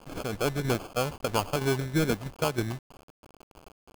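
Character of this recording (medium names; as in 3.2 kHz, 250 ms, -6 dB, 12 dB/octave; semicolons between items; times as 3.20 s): aliases and images of a low sample rate 1.9 kHz, jitter 0%; tremolo saw down 3.1 Hz, depth 55%; a quantiser's noise floor 8-bit, dither none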